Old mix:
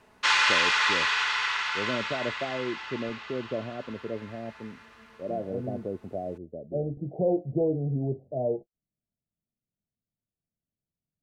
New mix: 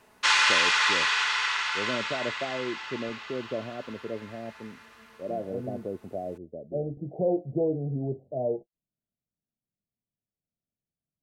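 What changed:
background: add treble shelf 8.5 kHz +11.5 dB; master: add bass shelf 160 Hz -4.5 dB

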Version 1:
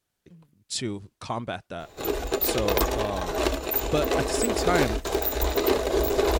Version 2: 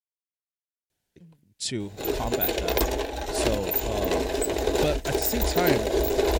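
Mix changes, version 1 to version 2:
speech: entry +0.90 s; master: add peaking EQ 1.2 kHz -11 dB 0.31 oct

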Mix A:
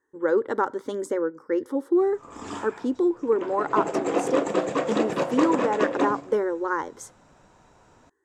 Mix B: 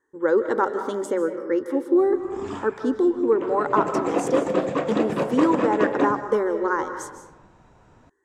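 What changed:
background: add tone controls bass +6 dB, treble -7 dB; reverb: on, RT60 1.1 s

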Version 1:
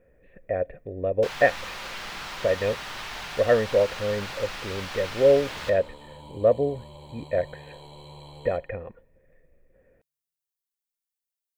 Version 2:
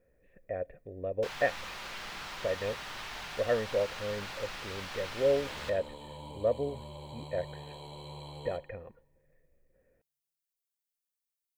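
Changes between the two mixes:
speech -9.0 dB; first sound -5.5 dB

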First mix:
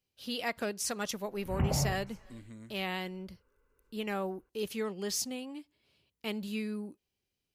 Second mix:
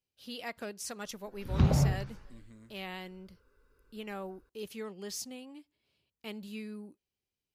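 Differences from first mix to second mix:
speech -6.0 dB; background: remove rippled Chebyshev low-pass 3 kHz, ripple 6 dB

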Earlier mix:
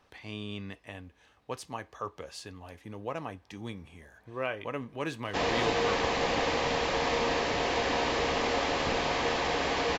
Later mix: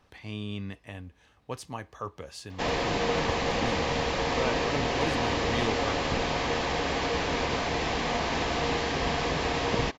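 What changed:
background: entry -2.75 s; master: add tone controls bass +6 dB, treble +1 dB

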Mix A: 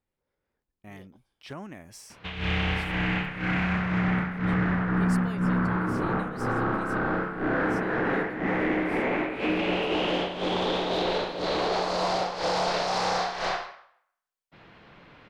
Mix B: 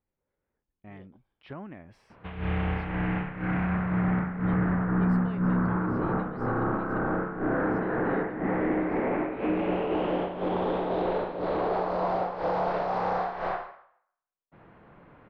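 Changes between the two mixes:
speech: add distance through air 430 m; background: add low-pass 1.3 kHz 12 dB/octave

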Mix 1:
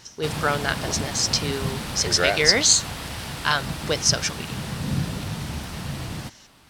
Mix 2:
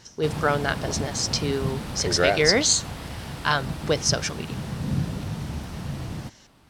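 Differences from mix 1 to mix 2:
background -4.0 dB; master: add tilt shelf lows +4 dB, about 1.1 kHz

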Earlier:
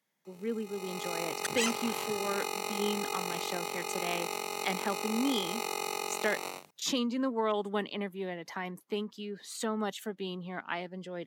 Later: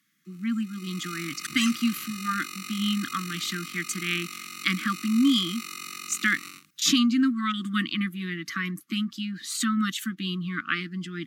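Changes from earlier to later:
speech +10.5 dB; master: add brick-wall FIR band-stop 350–1100 Hz

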